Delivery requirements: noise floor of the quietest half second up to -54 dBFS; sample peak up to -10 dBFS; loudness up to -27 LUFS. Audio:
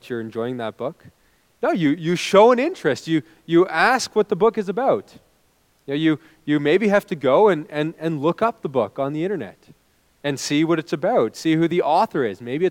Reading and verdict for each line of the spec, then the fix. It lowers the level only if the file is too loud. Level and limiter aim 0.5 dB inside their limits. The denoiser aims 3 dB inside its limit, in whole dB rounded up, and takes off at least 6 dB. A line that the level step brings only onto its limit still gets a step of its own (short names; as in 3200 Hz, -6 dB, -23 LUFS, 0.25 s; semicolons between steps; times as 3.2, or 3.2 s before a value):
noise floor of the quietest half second -61 dBFS: OK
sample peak -2.5 dBFS: fail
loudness -20.5 LUFS: fail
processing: gain -7 dB; limiter -10.5 dBFS